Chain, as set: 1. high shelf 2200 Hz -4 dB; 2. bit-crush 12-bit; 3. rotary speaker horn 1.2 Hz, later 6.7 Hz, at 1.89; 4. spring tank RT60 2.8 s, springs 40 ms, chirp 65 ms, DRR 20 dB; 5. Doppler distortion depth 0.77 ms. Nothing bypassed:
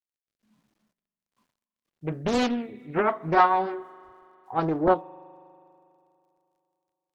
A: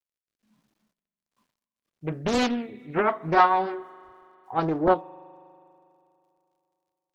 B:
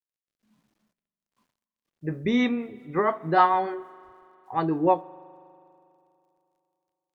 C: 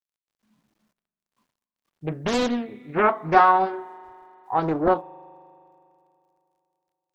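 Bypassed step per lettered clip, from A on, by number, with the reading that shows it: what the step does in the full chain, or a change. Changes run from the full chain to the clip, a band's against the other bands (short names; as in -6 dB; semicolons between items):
1, 4 kHz band +2.0 dB; 5, 250 Hz band +2.5 dB; 3, momentary loudness spread change +4 LU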